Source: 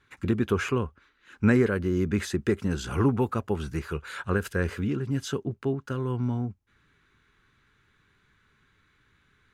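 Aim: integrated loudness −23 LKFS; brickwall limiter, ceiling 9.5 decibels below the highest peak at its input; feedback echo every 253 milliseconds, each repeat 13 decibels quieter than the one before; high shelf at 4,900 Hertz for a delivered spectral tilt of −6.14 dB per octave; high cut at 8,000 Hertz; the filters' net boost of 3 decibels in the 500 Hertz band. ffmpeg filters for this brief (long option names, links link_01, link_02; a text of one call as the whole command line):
ffmpeg -i in.wav -af "lowpass=8000,equalizer=frequency=500:width_type=o:gain=4,highshelf=frequency=4900:gain=7.5,alimiter=limit=-17dB:level=0:latency=1,aecho=1:1:253|506|759:0.224|0.0493|0.0108,volume=6dB" out.wav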